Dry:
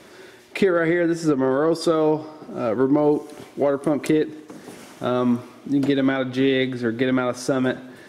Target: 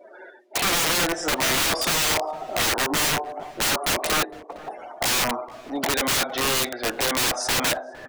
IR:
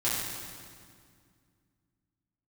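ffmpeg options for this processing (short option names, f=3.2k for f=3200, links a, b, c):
-filter_complex "[0:a]afftdn=nr=32:nf=-42,acontrast=26,highpass=f=720:t=q:w=4,aeval=exprs='(mod(7.08*val(0)+1,2)-1)/7.08':c=same,asplit=2[a][b];[b]adelay=460,lowpass=f=1.2k:p=1,volume=-18dB,asplit=2[c][d];[d]adelay=460,lowpass=f=1.2k:p=1,volume=0.18[e];[c][e]amix=inputs=2:normalize=0[f];[a][f]amix=inputs=2:normalize=0"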